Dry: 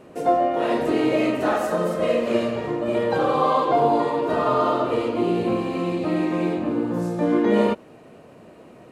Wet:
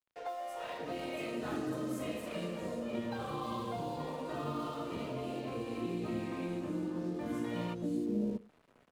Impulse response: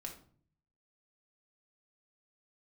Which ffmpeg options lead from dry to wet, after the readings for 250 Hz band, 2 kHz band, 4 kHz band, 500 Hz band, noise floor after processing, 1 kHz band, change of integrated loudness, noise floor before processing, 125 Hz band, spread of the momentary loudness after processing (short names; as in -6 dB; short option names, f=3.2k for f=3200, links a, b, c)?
-13.5 dB, -15.0 dB, -12.0 dB, -18.5 dB, -66 dBFS, -19.0 dB, -16.5 dB, -47 dBFS, -11.0 dB, 4 LU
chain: -filter_complex "[0:a]acrossover=split=550|5000[a][b][c];[c]adelay=320[d];[a]adelay=630[e];[e][b][d]amix=inputs=3:normalize=0,aeval=exprs='sgn(val(0))*max(abs(val(0))-0.00531,0)':c=same,asplit=2[f][g];[1:a]atrim=start_sample=2205,afade=t=out:st=0.17:d=0.01,atrim=end_sample=7938[h];[g][h]afir=irnorm=-1:irlink=0,volume=-12dB[i];[f][i]amix=inputs=2:normalize=0,acrossover=split=240|3000[j][k][l];[k]acompressor=threshold=-30dB:ratio=6[m];[j][m][l]amix=inputs=3:normalize=0,volume=-9dB"